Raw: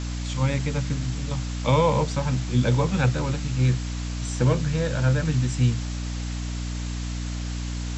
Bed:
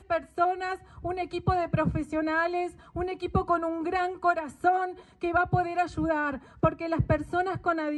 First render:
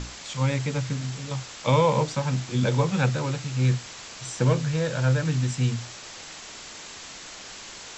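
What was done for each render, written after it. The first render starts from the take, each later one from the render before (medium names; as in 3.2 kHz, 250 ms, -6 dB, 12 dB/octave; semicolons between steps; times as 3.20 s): hum notches 60/120/180/240/300 Hz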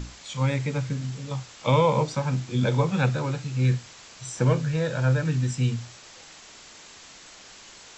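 noise print and reduce 6 dB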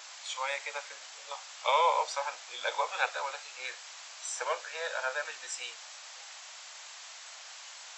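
steep high-pass 620 Hz 36 dB/octave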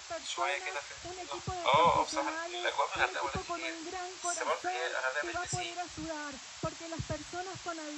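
add bed -13 dB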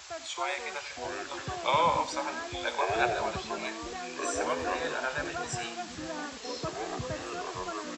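ever faster or slower copies 438 ms, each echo -6 st, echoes 2, each echo -6 dB; delay 91 ms -14.5 dB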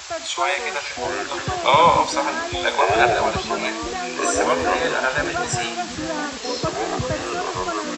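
trim +11.5 dB; peak limiter -3 dBFS, peak gain reduction 1 dB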